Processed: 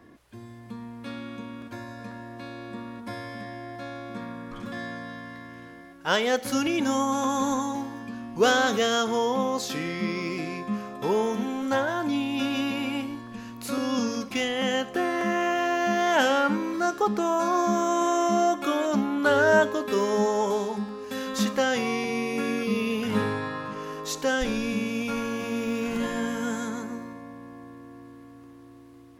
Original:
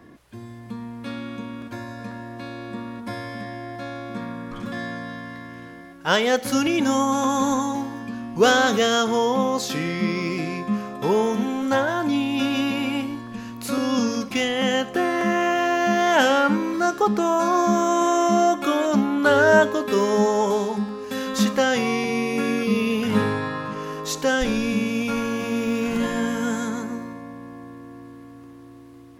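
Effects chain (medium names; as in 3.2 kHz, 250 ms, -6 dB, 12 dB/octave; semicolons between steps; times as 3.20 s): peaking EQ 160 Hz -3.5 dB 0.73 oct; trim -4 dB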